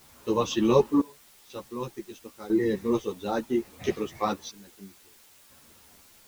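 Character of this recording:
sample-and-hold tremolo 2 Hz, depth 95%
a quantiser's noise floor 10 bits, dither triangular
a shimmering, thickened sound

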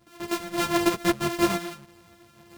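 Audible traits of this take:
a buzz of ramps at a fixed pitch in blocks of 128 samples
sample-and-hold tremolo 3.2 Hz, depth 80%
a shimmering, thickened sound

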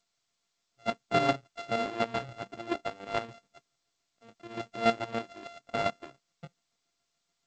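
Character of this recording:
a buzz of ramps at a fixed pitch in blocks of 64 samples
chopped level 7 Hz, depth 60%, duty 30%
G.722

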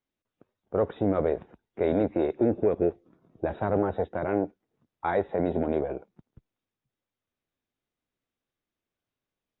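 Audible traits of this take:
background noise floor −90 dBFS
spectral slope −5.0 dB per octave

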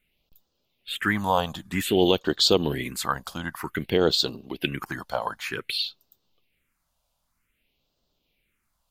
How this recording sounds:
phaser sweep stages 4, 0.53 Hz, lowest notch 340–2,200 Hz

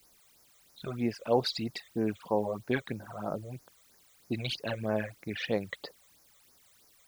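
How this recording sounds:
a quantiser's noise floor 10 bits, dither triangular
phaser sweep stages 12, 3.1 Hz, lowest notch 260–3,300 Hz

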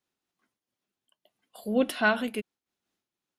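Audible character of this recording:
amplitude modulation by smooth noise

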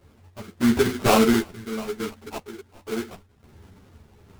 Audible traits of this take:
aliases and images of a low sample rate 1,800 Hz, jitter 20%
sample-and-hold tremolo, depth 70%
a shimmering, thickened sound

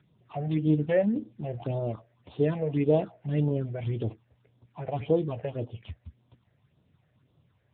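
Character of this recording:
a buzz of ramps at a fixed pitch in blocks of 8 samples
phaser sweep stages 6, 1.8 Hz, lowest notch 270–2,100 Hz
AMR narrowband

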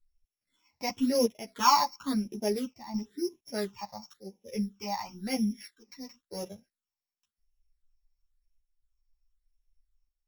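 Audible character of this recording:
a buzz of ramps at a fixed pitch in blocks of 8 samples
phaser sweep stages 8, 0.96 Hz, lowest notch 420–1,400 Hz
chopped level 0.68 Hz, depth 60%, duty 85%
a shimmering, thickened sound

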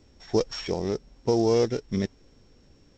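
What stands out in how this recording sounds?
a buzz of ramps at a fixed pitch in blocks of 8 samples
G.722

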